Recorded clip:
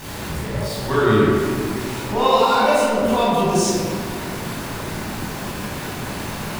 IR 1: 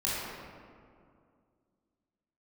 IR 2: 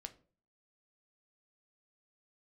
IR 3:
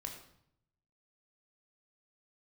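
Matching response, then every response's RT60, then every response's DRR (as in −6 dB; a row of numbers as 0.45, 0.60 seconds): 1; 2.3, 0.40, 0.70 seconds; −8.5, 7.5, 2.0 decibels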